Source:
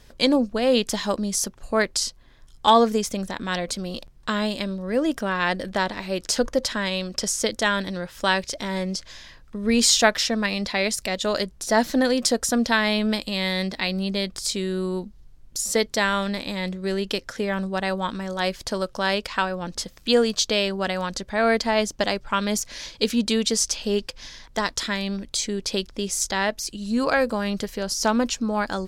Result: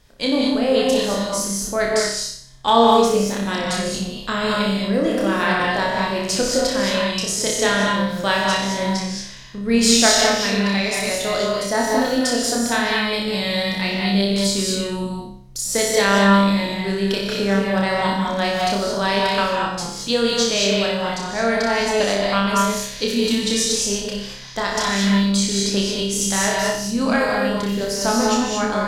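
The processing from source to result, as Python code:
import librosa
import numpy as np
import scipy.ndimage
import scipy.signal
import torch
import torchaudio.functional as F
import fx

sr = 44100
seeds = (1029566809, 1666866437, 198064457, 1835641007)

p1 = fx.rider(x, sr, range_db=3, speed_s=2.0)
p2 = p1 + fx.room_flutter(p1, sr, wall_m=5.2, rt60_s=0.56, dry=0)
p3 = fx.rev_gated(p2, sr, seeds[0], gate_ms=250, shape='rising', drr_db=-0.5)
y = p3 * 10.0 ** (-2.0 / 20.0)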